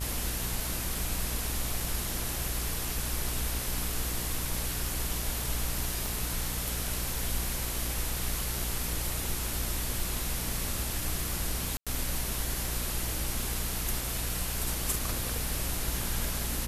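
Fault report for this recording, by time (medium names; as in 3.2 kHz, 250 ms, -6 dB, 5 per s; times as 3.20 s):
buzz 60 Hz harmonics 34 -37 dBFS
6.06 s: pop
11.77–11.87 s: dropout 96 ms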